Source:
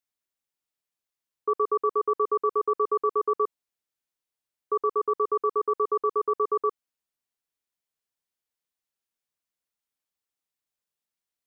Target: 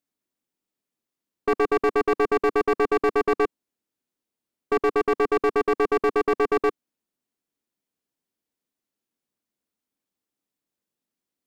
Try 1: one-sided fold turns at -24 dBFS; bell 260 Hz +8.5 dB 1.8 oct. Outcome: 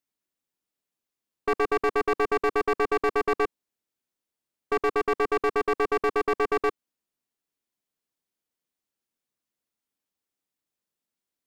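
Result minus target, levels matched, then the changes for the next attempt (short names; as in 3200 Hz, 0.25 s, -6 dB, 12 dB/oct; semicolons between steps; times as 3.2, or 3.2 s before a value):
250 Hz band -3.0 dB
change: bell 260 Hz +15 dB 1.8 oct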